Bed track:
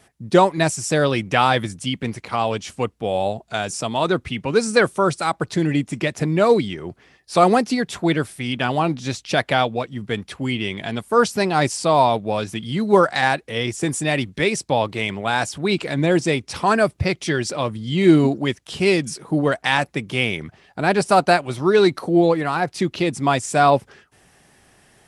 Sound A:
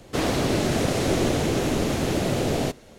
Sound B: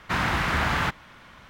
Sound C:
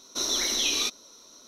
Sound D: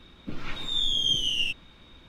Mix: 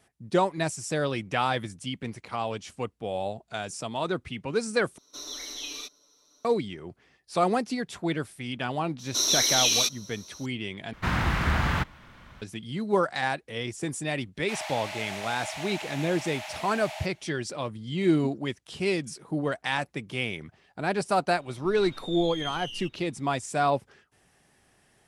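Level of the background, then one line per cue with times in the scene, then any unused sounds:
bed track −9.5 dB
0:04.98: overwrite with C −14 dB + comb filter 6.8 ms, depth 89%
0:08.99: mix in C −3 dB + high-shelf EQ 2,800 Hz +9 dB
0:10.93: overwrite with B −4 dB + low-shelf EQ 210 Hz +9 dB
0:14.35: mix in A −3 dB, fades 0.10 s + Chebyshev high-pass with heavy ripple 600 Hz, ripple 9 dB
0:21.36: mix in D −12 dB

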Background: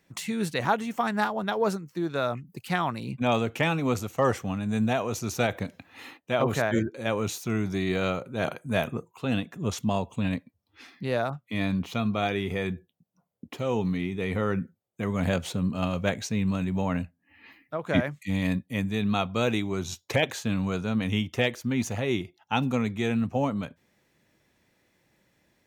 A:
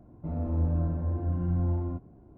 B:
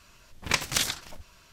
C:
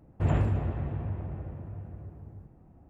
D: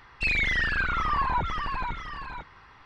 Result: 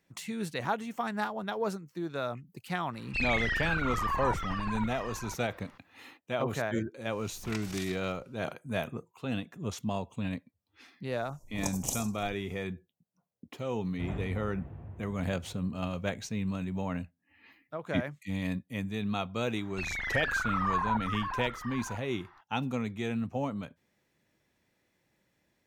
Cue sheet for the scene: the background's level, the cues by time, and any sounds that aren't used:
background −6.5 dB
0:02.93: mix in D −5.5 dB
0:07.01: mix in B −18 dB + background raised ahead of every attack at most 60 dB per second
0:11.12: mix in B −3.5 dB + elliptic band-stop filter 880–6,200 Hz
0:13.79: mix in C −11.5 dB
0:19.56: mix in D −13 dB + flat-topped bell 1,100 Hz +9.5 dB
not used: A

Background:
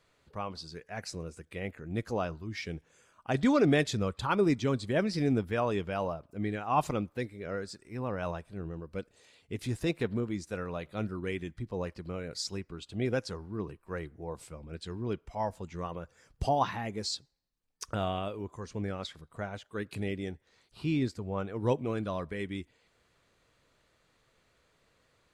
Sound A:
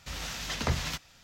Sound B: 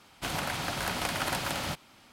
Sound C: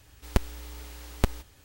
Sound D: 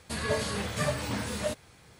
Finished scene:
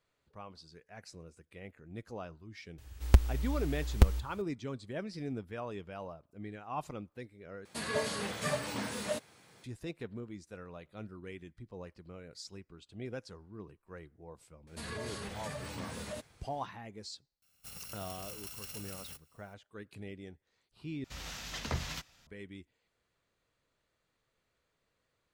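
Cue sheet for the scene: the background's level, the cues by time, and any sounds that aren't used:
background −11 dB
0:02.78: mix in C −3.5 dB + parametric band 64 Hz +13 dB 1 octave
0:07.65: overwrite with D −3.5 dB + high-pass filter 160 Hz
0:14.67: mix in D −8 dB + brickwall limiter −24.5 dBFS
0:17.42: mix in B −14.5 dB + samples in bit-reversed order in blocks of 128 samples
0:21.04: overwrite with A −6.5 dB

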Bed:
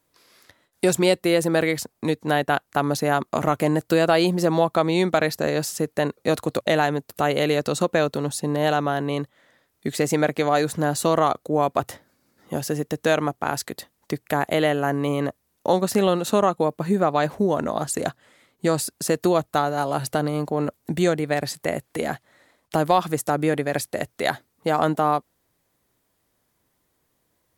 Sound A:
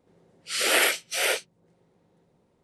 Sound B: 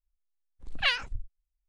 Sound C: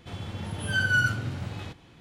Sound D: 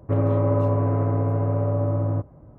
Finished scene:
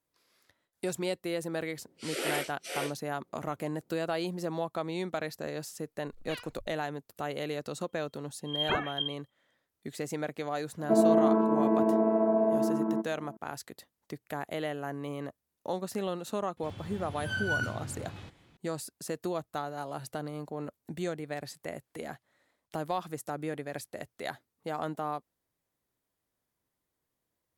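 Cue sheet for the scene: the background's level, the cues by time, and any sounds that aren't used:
bed −14 dB
0:01.52: mix in A −13.5 dB + parametric band 320 Hz +11.5 dB 1.5 octaves
0:05.46: mix in B −17 dB
0:07.86: mix in B −4 dB + voice inversion scrambler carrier 3,200 Hz
0:10.79: mix in D −2.5 dB + channel vocoder with a chord as carrier bare fifth, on A3
0:16.57: mix in C −8 dB

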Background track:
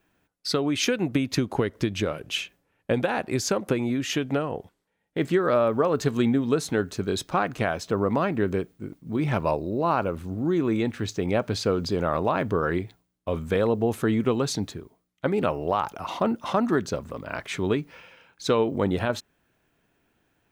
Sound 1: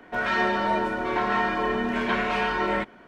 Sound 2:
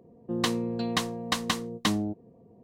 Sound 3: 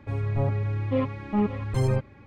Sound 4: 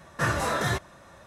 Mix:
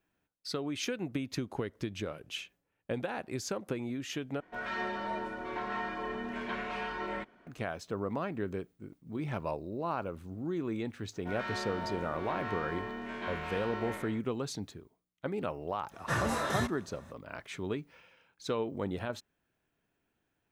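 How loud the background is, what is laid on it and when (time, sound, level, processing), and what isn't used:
background track −11 dB
0:04.40: overwrite with 1 −12 dB
0:11.13: mix in 1 −16 dB + peak hold with a decay on every bin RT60 1.05 s
0:15.89: mix in 4 −6 dB, fades 0.05 s
not used: 2, 3

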